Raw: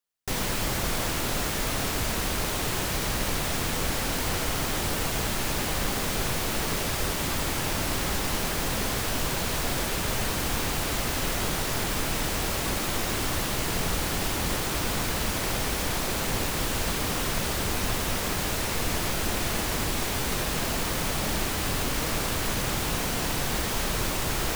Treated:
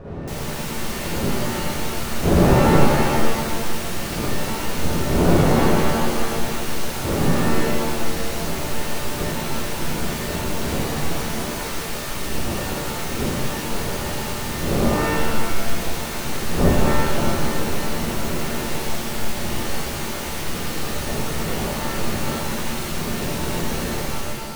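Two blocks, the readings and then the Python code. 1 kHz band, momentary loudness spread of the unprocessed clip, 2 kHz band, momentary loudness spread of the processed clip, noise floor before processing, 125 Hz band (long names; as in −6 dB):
+5.5 dB, 0 LU, +2.0 dB, 9 LU, −29 dBFS, +7.5 dB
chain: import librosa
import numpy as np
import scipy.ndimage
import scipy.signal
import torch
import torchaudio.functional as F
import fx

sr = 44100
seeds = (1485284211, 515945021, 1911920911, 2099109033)

y = fx.fade_out_tail(x, sr, length_s=0.58)
y = fx.dmg_wind(y, sr, seeds[0], corner_hz=330.0, level_db=-23.0)
y = fx.rev_shimmer(y, sr, seeds[1], rt60_s=1.7, semitones=7, shimmer_db=-2, drr_db=-3.0)
y = y * librosa.db_to_amplitude(-7.5)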